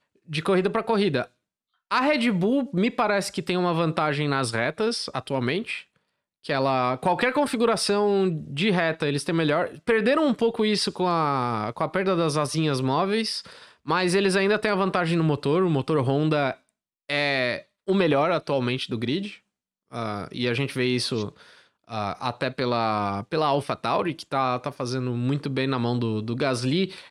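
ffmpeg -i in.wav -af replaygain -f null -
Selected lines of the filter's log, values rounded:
track_gain = +5.7 dB
track_peak = 0.309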